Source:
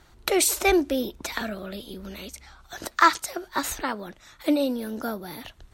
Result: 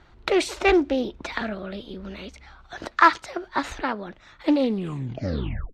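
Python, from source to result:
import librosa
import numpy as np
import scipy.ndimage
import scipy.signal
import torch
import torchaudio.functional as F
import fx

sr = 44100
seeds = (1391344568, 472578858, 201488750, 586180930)

y = fx.tape_stop_end(x, sr, length_s=1.18)
y = scipy.signal.sosfilt(scipy.signal.butter(2, 3400.0, 'lowpass', fs=sr, output='sos'), y)
y = fx.doppler_dist(y, sr, depth_ms=0.23)
y = F.gain(torch.from_numpy(y), 2.0).numpy()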